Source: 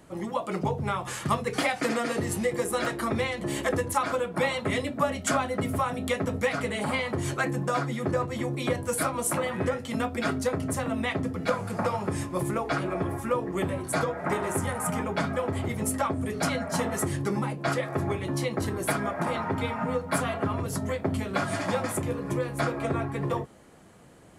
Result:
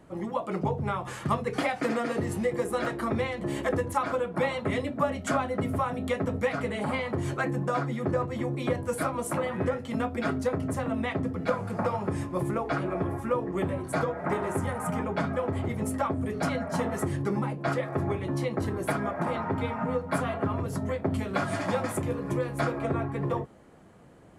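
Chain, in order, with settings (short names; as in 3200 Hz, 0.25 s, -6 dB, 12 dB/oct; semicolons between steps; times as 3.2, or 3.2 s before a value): high shelf 2700 Hz -10 dB, from 21.12 s -5 dB, from 22.79 s -10 dB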